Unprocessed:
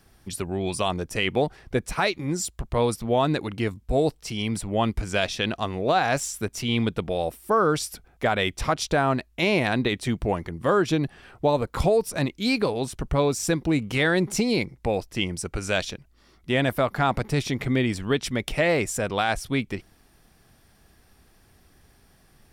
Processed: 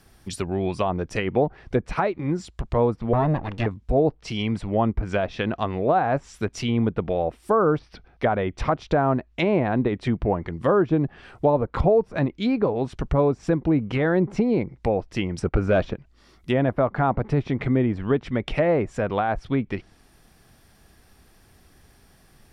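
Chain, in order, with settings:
0:03.13–0:03.66: lower of the sound and its delayed copy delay 1.1 ms
0:15.38–0:15.94: leveller curve on the samples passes 2
treble cut that deepens with the level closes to 1,100 Hz, closed at −20.5 dBFS
0:07.79–0:08.52: Savitzky-Golay smoothing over 15 samples
level +2.5 dB

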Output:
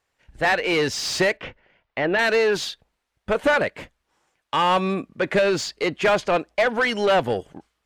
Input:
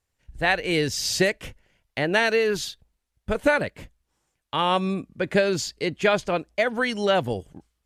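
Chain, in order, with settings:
mid-hump overdrive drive 19 dB, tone 2,000 Hz, clips at −8.5 dBFS
0:01.37–0:02.19: high-frequency loss of the air 220 metres
level −1.5 dB

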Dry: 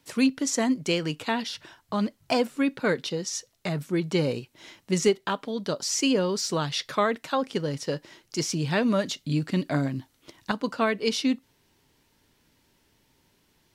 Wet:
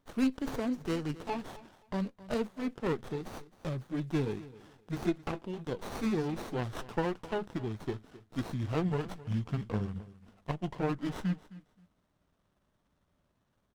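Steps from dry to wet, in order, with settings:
pitch glide at a constant tempo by −8 semitones starting unshifted
repeating echo 263 ms, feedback 21%, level −18 dB
windowed peak hold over 17 samples
level −6.5 dB

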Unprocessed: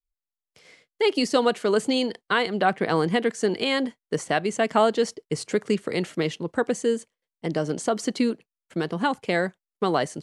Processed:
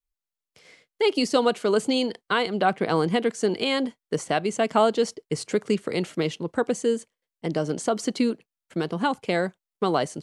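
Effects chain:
dynamic equaliser 1,800 Hz, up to −6 dB, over −46 dBFS, Q 4.7

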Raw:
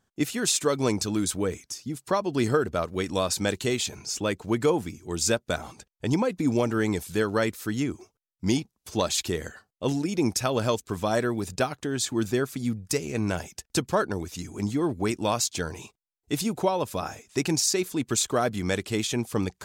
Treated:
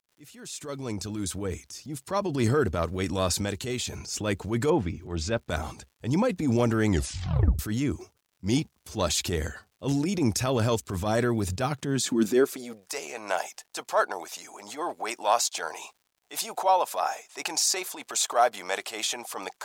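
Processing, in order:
fade in at the beginning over 2.38 s
0:03.36–0:03.94: downward compressor 2 to 1, threshold −31 dBFS, peak gain reduction 6 dB
0:04.70–0:05.49: low-pass filter 3,200 Hz 12 dB per octave
transient designer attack −9 dB, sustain +3 dB
0:06.87: tape stop 0.72 s
high-pass filter sweep 65 Hz → 740 Hz, 0:11.38–0:12.92
surface crackle 160 per second −54 dBFS
level +1 dB

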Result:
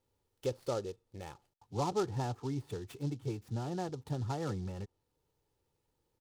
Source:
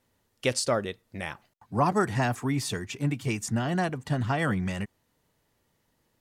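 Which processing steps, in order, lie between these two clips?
de-essing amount 80%
treble cut that deepens with the level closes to 2,000 Hz, closed at −26 dBFS
parametric band 2,000 Hz −14.5 dB 1.1 octaves
comb filter 2.3 ms, depth 54%
short delay modulated by noise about 4,500 Hz, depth 0.038 ms
level −7.5 dB

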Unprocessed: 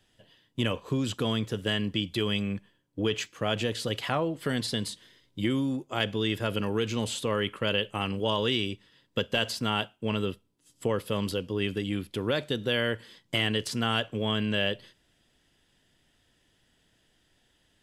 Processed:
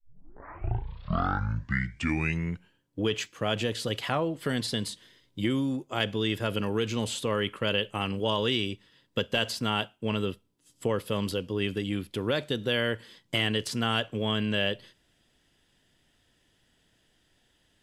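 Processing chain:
turntable start at the beginning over 2.90 s

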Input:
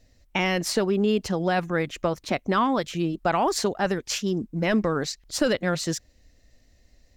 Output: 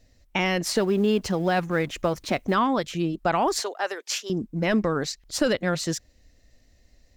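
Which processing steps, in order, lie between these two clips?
0:00.75–0:02.55: mu-law and A-law mismatch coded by mu
0:03.60–0:04.30: Bessel high-pass filter 590 Hz, order 8

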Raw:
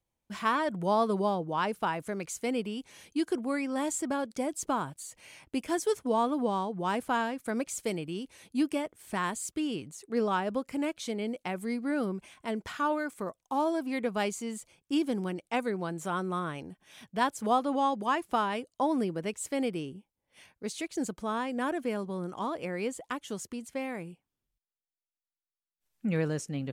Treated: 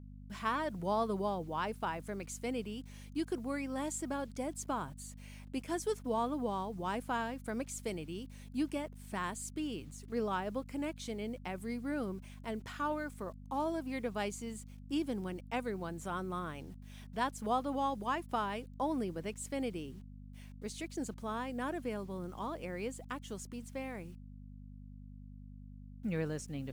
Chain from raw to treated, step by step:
bit-depth reduction 10 bits, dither none
hum with harmonics 50 Hz, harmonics 5, −44 dBFS −4 dB per octave
level −6.5 dB

